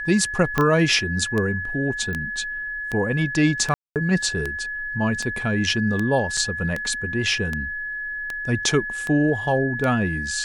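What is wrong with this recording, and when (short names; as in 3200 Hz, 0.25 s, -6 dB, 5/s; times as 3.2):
tick 78 rpm -13 dBFS
tone 1700 Hz -27 dBFS
0.58 pop -7 dBFS
2.13 pop -19 dBFS
3.74–3.96 gap 0.218 s
6.37 gap 3.4 ms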